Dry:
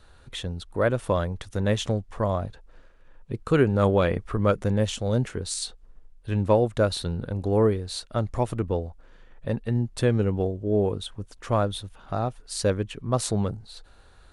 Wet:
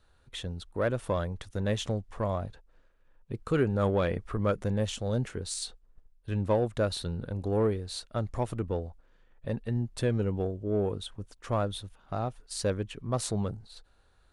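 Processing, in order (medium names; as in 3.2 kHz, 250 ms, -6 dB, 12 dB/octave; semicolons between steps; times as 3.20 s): gate -43 dBFS, range -7 dB; in parallel at -4.5 dB: saturation -20 dBFS, distortion -11 dB; on the sum: trim -8.5 dB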